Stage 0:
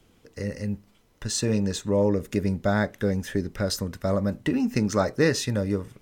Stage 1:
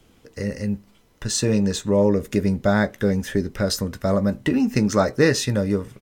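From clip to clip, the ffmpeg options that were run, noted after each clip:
-filter_complex "[0:a]asplit=2[a][b];[b]adelay=15,volume=-13dB[c];[a][c]amix=inputs=2:normalize=0,volume=4dB"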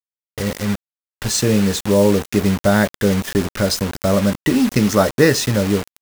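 -af "acrusher=bits=4:mix=0:aa=0.000001,volume=4dB"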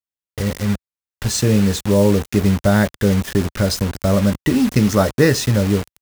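-af "equalizer=f=66:w=0.54:g=8,volume=-2dB"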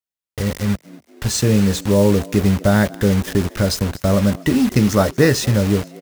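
-filter_complex "[0:a]asplit=4[a][b][c][d];[b]adelay=237,afreqshift=76,volume=-22dB[e];[c]adelay=474,afreqshift=152,volume=-28.4dB[f];[d]adelay=711,afreqshift=228,volume=-34.8dB[g];[a][e][f][g]amix=inputs=4:normalize=0"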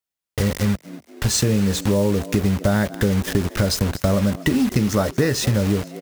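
-af "acompressor=threshold=-19dB:ratio=6,volume=3.5dB"

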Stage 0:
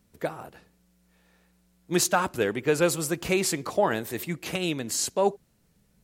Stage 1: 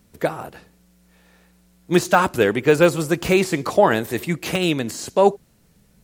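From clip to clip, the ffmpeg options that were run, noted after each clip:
-af "deesser=0.75,volume=8.5dB"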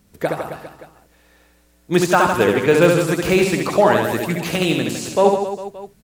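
-af "aecho=1:1:70|157.5|266.9|403.6|574.5:0.631|0.398|0.251|0.158|0.1"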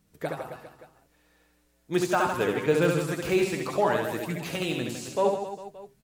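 -af "flanger=delay=6.3:depth=1.9:regen=57:speed=0.72:shape=sinusoidal,volume=-6dB"

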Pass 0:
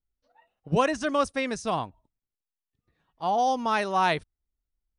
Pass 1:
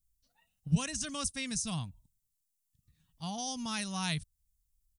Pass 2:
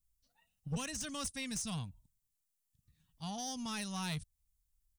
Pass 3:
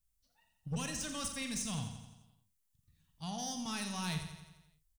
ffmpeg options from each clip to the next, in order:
-filter_complex "[0:a]firequalizer=gain_entry='entry(160,0);entry(370,-25);entry(2800,-7);entry(7400,7)':delay=0.05:min_phase=1,asplit=2[a][b];[b]acompressor=threshold=-44dB:ratio=6,volume=0dB[c];[a][c]amix=inputs=2:normalize=0"
-af "aeval=exprs='(tanh(31.6*val(0)+0.1)-tanh(0.1))/31.6':c=same,volume=-2dB"
-filter_complex "[0:a]asplit=2[a][b];[b]adelay=45,volume=-9.5dB[c];[a][c]amix=inputs=2:normalize=0,aecho=1:1:86|172|258|344|430|516|602:0.355|0.206|0.119|0.0692|0.0402|0.0233|0.0135"

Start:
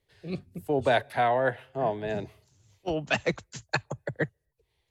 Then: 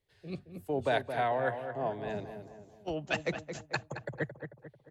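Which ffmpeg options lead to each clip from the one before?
-filter_complex "[0:a]asplit=2[a][b];[b]adelay=221,lowpass=f=1.8k:p=1,volume=-8dB,asplit=2[c][d];[d]adelay=221,lowpass=f=1.8k:p=1,volume=0.48,asplit=2[e][f];[f]adelay=221,lowpass=f=1.8k:p=1,volume=0.48,asplit=2[g][h];[h]adelay=221,lowpass=f=1.8k:p=1,volume=0.48,asplit=2[i][j];[j]adelay=221,lowpass=f=1.8k:p=1,volume=0.48,asplit=2[k][l];[l]adelay=221,lowpass=f=1.8k:p=1,volume=0.48[m];[a][c][e][g][i][k][m]amix=inputs=7:normalize=0,volume=-6dB"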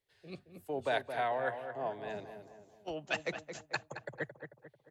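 -af "lowshelf=f=290:g=-10,volume=-1.5dB"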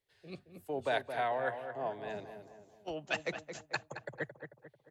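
-af anull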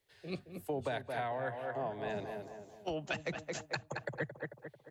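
-filter_complex "[0:a]acrossover=split=210[a][b];[b]acompressor=threshold=-41dB:ratio=10[c];[a][c]amix=inputs=2:normalize=0,volume=6.5dB"

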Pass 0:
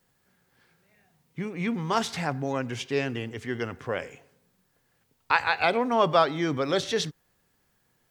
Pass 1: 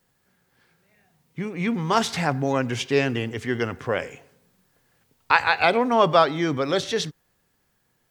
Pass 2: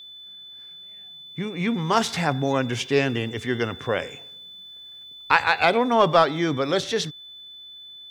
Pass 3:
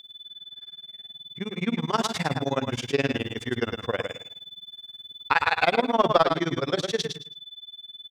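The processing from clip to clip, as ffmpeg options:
-af "dynaudnorm=f=210:g=17:m=6dB,volume=1dB"
-filter_complex "[0:a]asplit=2[a][b];[b]aeval=exprs='clip(val(0),-1,0.178)':c=same,volume=-4dB[c];[a][c]amix=inputs=2:normalize=0,aeval=exprs='val(0)+0.0158*sin(2*PI*3500*n/s)':c=same,volume=-4dB"
-filter_complex "[0:a]tremolo=f=19:d=0.98,asplit=2[a][b];[b]aecho=0:1:108|216|324:0.501|0.1|0.02[c];[a][c]amix=inputs=2:normalize=0"

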